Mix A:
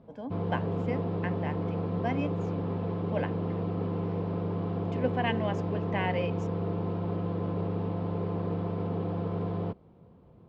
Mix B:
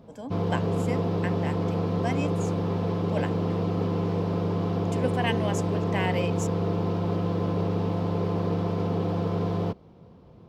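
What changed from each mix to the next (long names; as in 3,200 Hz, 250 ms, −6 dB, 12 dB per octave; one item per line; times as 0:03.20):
background +4.5 dB
master: remove high-frequency loss of the air 280 metres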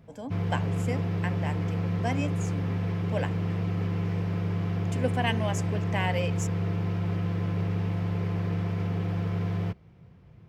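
background: add graphic EQ with 10 bands 125 Hz +4 dB, 250 Hz −8 dB, 500 Hz −8 dB, 1,000 Hz −8 dB, 2,000 Hz +8 dB, 4,000 Hz −7 dB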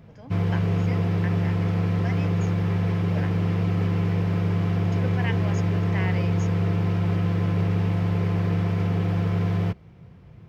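speech: add Chebyshev low-pass with heavy ripple 6,800 Hz, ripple 9 dB
background +5.5 dB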